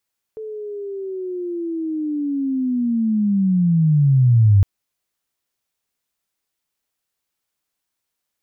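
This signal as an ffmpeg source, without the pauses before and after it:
-f lavfi -i "aevalsrc='pow(10,(-28+19.5*t/4.26)/20)*sin(2*PI*(440*t-345*t*t/(2*4.26)))':d=4.26:s=44100"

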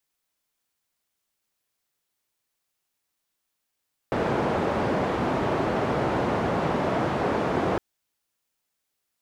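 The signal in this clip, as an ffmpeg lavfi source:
-f lavfi -i "anoisesrc=c=white:d=3.66:r=44100:seed=1,highpass=f=92,lowpass=f=720,volume=-5.2dB"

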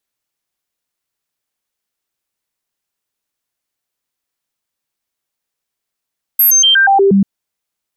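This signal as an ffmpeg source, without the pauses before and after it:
-f lavfi -i "aevalsrc='0.501*clip(min(mod(t,0.12),0.12-mod(t,0.12))/0.005,0,1)*sin(2*PI*12600*pow(2,-floor(t/0.12)/1)*mod(t,0.12))':d=0.84:s=44100"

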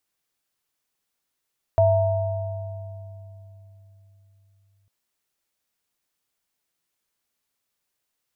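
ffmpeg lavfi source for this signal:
-f lavfi -i "aevalsrc='0.112*pow(10,-3*t/4.28)*sin(2*PI*99*t)+0.2*pow(10,-3*t/2.46)*sin(2*PI*662*t)+0.0251*pow(10,-3*t/2.26)*sin(2*PI*926*t)':d=3.1:s=44100"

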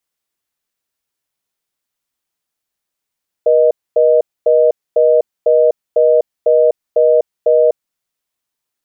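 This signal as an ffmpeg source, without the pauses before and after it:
-f lavfi -i "aevalsrc='0.316*(sin(2*PI*480*t)+sin(2*PI*620*t))*clip(min(mod(t,0.5),0.25-mod(t,0.5))/0.005,0,1)':d=4.28:s=44100"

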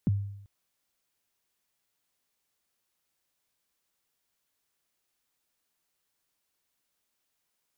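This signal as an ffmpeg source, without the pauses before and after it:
-f lavfi -i "aevalsrc='0.106*pow(10,-3*t/0.78)*sin(2*PI*(260*0.023/log(100/260)*(exp(log(100/260)*min(t,0.023)/0.023)-1)+100*max(t-0.023,0)))':d=0.39:s=44100"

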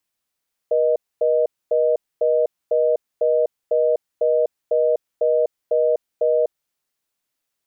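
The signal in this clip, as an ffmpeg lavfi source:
-f lavfi -i "aevalsrc='0.133*(sin(2*PI*480*t)+sin(2*PI*620*t))*clip(min(mod(t,0.5),0.25-mod(t,0.5))/0.005,0,1)':d=5.99:s=44100"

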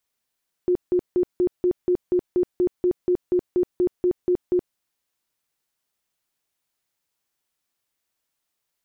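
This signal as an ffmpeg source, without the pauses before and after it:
-f lavfi -i "aevalsrc='0.158*sin(2*PI*359*mod(t,0.24))*lt(mod(t,0.24),26/359)':d=4.08:s=44100"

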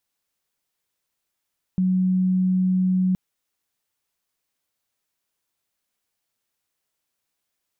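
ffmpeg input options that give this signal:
-f lavfi -i "sine=f=185:d=1.37:r=44100,volume=1.06dB"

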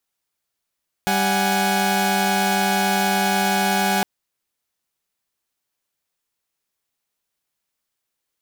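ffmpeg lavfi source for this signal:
-f lavfi -i "aevalsrc='0.106*((2*mod(196*t,1)-1)+(2*mod(739.99*t,1)-1)+(2*mod(830.61*t,1)-1))':d=2.96:s=44100"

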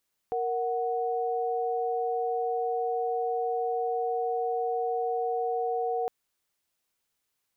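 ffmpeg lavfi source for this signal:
-f lavfi -i "aevalsrc='0.0355*(sin(2*PI*466.16*t)+sin(2*PI*739.99*t))':d=5.76:s=44100"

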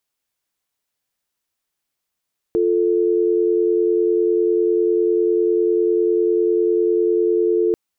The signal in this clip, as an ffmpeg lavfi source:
-f lavfi -i "aevalsrc='0.141*(sin(2*PI*350*t)+sin(2*PI*440*t))':d=5.19:s=44100"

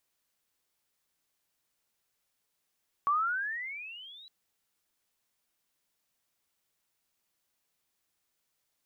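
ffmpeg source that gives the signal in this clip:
-f lavfi -i "aevalsrc='pow(10,(-23-26*t/1.21)/20)*sin(2*PI*1120*1.21/(22*log(2)/12)*(exp(22*log(2)/12*t/1.21)-1))':d=1.21:s=44100"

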